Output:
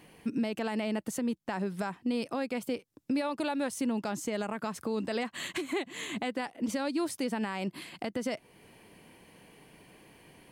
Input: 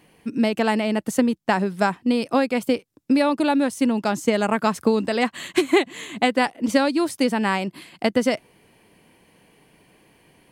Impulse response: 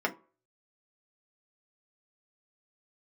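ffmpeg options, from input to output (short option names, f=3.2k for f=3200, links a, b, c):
-filter_complex "[0:a]asettb=1/sr,asplit=3[a][b][c];[a]atrim=end=3.214[d];[b]atrim=start=3.21:end=3.75,asetpts=PTS-STARTPTS,afade=t=in:d=0.004:c=qsin,afade=t=out:st=0.536:d=0.004:c=qsin,equalizer=f=280:w=1.5:g=-5.5[e];[c]atrim=start=3.746[f];[d][e]acrossfade=d=0.004:c1=hsin:c2=qsin[g];[g][f]acrossfade=d=0.004:c1=qsin:c2=hsin,acompressor=threshold=-36dB:ratio=1.5,alimiter=limit=-23dB:level=0:latency=1:release=114"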